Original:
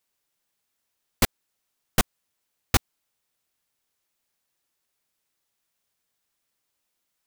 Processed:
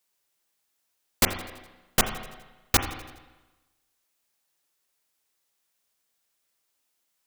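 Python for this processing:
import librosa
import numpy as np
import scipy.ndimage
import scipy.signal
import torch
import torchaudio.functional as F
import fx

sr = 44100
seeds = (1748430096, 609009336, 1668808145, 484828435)

p1 = fx.bass_treble(x, sr, bass_db=-5, treble_db=3)
p2 = p1 + fx.echo_feedback(p1, sr, ms=83, feedback_pct=58, wet_db=-20.0, dry=0)
y = fx.rev_spring(p2, sr, rt60_s=1.1, pass_ms=(32, 43), chirp_ms=80, drr_db=6.5)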